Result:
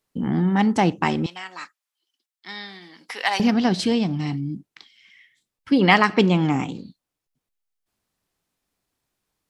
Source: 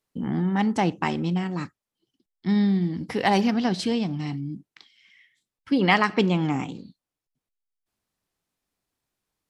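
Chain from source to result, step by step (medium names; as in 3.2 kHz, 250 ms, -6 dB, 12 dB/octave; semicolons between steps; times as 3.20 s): 1.26–3.40 s: high-pass 1.1 kHz 12 dB/octave; trim +4 dB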